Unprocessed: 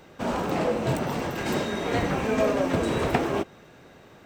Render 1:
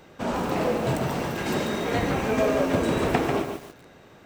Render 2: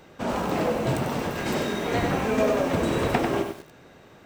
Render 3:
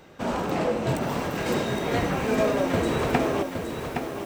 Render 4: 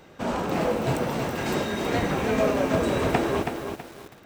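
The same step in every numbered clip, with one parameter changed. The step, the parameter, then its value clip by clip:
feedback echo at a low word length, delay time: 143, 95, 816, 325 milliseconds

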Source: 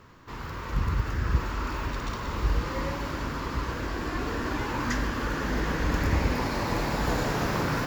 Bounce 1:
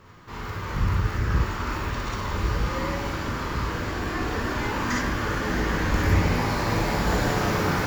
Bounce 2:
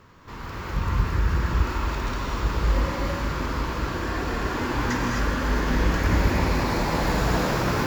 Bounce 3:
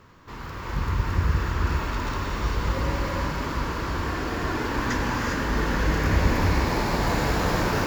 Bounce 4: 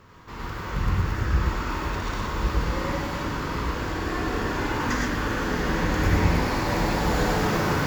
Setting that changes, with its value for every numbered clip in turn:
reverb whose tail is shaped and stops, gate: 80, 280, 430, 140 milliseconds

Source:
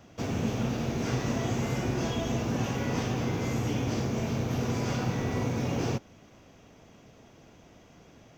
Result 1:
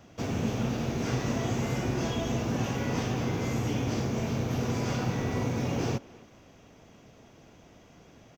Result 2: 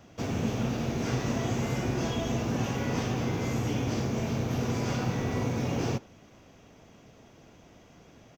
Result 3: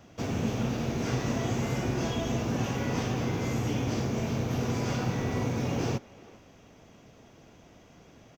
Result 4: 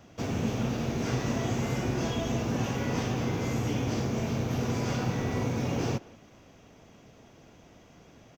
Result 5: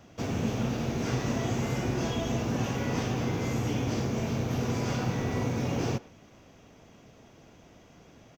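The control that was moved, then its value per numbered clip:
far-end echo of a speakerphone, delay time: 260, 80, 390, 180, 120 milliseconds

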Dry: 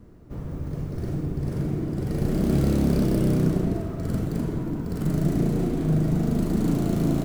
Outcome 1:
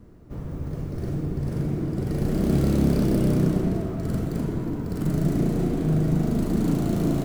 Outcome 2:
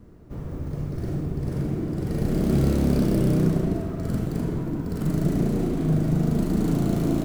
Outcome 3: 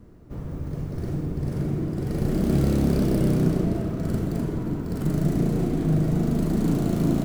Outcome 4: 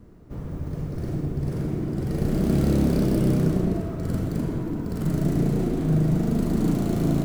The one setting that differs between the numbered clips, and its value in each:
tape delay, delay time: 285, 72, 572, 112 milliseconds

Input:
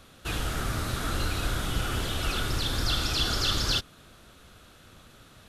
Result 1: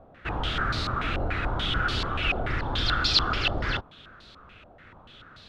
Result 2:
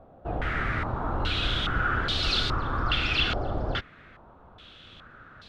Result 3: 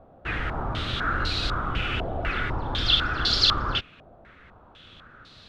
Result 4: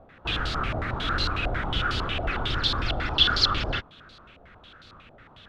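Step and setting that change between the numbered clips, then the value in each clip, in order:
low-pass on a step sequencer, speed: 6.9, 2.4, 4, 11 Hertz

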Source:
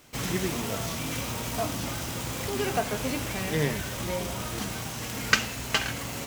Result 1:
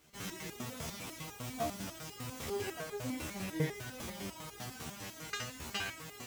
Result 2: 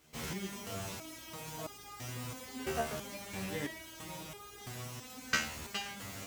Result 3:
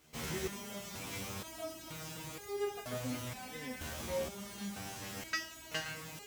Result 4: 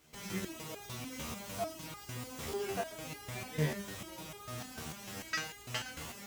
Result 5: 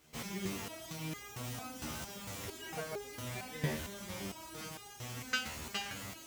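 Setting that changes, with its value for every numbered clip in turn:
step-sequenced resonator, speed: 10, 3, 2.1, 6.7, 4.4 Hertz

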